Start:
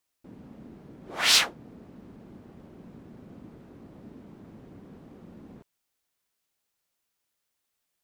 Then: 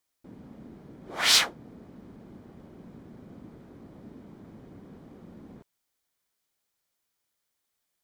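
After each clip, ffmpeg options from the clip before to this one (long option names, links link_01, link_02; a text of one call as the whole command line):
ffmpeg -i in.wav -af "bandreject=frequency=2700:width=14" out.wav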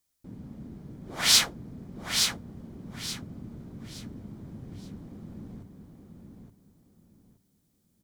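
ffmpeg -i in.wav -filter_complex "[0:a]bass=frequency=250:gain=12,treble=frequency=4000:gain=7,asplit=2[link_01][link_02];[link_02]aecho=0:1:873|1746|2619|3492:0.531|0.149|0.0416|0.0117[link_03];[link_01][link_03]amix=inputs=2:normalize=0,volume=-3.5dB" out.wav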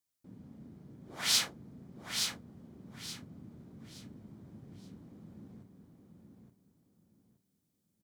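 ffmpeg -i in.wav -filter_complex "[0:a]highpass=86,asplit=2[link_01][link_02];[link_02]adelay=37,volume=-11dB[link_03];[link_01][link_03]amix=inputs=2:normalize=0,volume=-8.5dB" out.wav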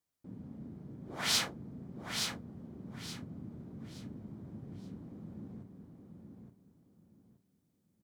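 ffmpeg -i in.wav -af "highshelf=frequency=2000:gain=-9,volume=5dB" out.wav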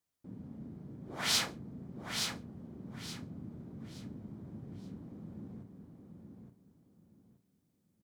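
ffmpeg -i in.wav -af "aecho=1:1:68|136:0.0891|0.0241" out.wav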